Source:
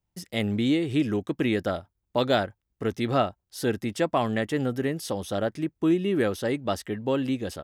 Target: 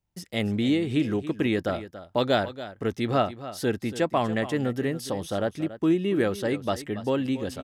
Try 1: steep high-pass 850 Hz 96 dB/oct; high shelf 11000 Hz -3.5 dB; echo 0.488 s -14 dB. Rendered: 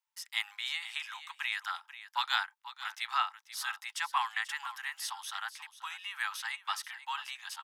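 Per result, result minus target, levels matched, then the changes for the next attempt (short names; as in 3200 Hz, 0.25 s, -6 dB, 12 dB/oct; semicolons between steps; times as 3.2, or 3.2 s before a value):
echo 0.206 s late; 1000 Hz band +5.5 dB
change: echo 0.282 s -14 dB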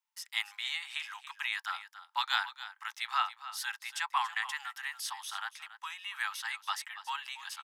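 1000 Hz band +5.5 dB
remove: steep high-pass 850 Hz 96 dB/oct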